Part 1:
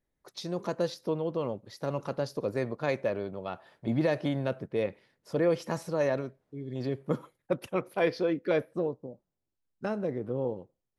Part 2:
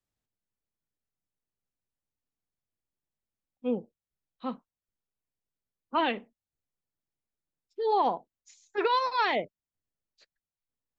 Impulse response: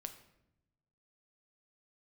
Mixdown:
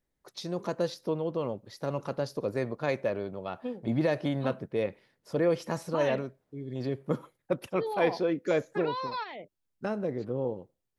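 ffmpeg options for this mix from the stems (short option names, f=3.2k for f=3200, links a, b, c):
-filter_complex "[0:a]volume=0dB,asplit=2[a][b];[1:a]alimiter=level_in=0.5dB:limit=-24dB:level=0:latency=1:release=16,volume=-0.5dB,acompressor=threshold=-32dB:ratio=6,volume=1dB[c];[b]apad=whole_len=484542[d];[c][d]sidechaingate=range=-7dB:threshold=-55dB:ratio=16:detection=peak[e];[a][e]amix=inputs=2:normalize=0"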